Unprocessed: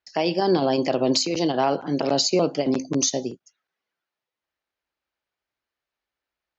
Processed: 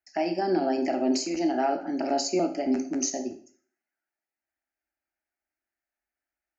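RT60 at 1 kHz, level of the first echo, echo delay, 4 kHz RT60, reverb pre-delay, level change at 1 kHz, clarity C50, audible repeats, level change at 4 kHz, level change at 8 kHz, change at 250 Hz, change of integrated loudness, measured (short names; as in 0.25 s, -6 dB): 0.50 s, none, none, 0.45 s, 6 ms, -3.0 dB, 11.5 dB, none, -11.0 dB, n/a, -2.5 dB, -4.5 dB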